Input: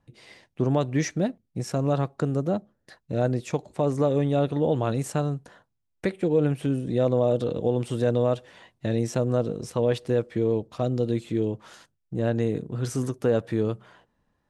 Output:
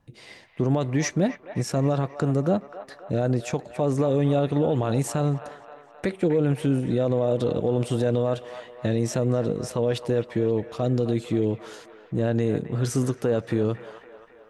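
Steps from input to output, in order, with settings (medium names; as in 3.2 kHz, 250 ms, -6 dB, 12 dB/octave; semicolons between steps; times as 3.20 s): peak limiter -17.5 dBFS, peak gain reduction 6.5 dB; on a send: feedback echo behind a band-pass 264 ms, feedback 59%, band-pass 1.3 kHz, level -9 dB; on the sum: trim +4 dB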